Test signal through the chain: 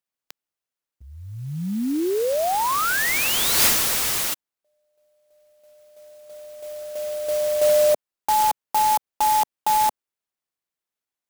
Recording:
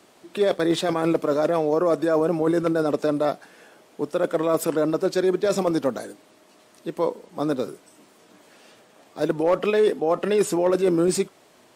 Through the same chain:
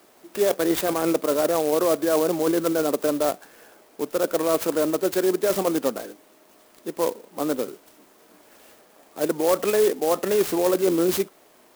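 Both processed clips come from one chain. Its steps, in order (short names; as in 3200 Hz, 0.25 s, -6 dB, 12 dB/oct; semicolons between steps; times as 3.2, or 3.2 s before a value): HPF 220 Hz 12 dB/oct; bell 5000 Hz +6.5 dB 0.36 oct; clock jitter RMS 0.063 ms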